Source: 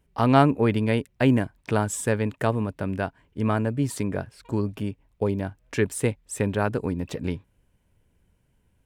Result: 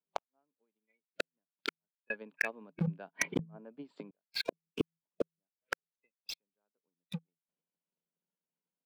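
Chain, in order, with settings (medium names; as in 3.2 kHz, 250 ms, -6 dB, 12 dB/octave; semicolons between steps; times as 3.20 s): inverted gate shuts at -24 dBFS, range -36 dB; transient shaper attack +10 dB, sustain -2 dB; spectral noise reduction 26 dB; rippled Chebyshev high-pass 160 Hz, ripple 3 dB; harmonic-percussive split harmonic +3 dB; steep low-pass 4.5 kHz 48 dB/octave; low-pass that closes with the level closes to 1.1 kHz, closed at -40 dBFS; peaking EQ 220 Hz -6 dB 0.65 oct; inverted gate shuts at -32 dBFS, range -39 dB; waveshaping leveller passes 3; peaking EQ 1.9 kHz -7.5 dB 0.26 oct; 2.10–4.11 s: level flattener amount 100%; trim +6 dB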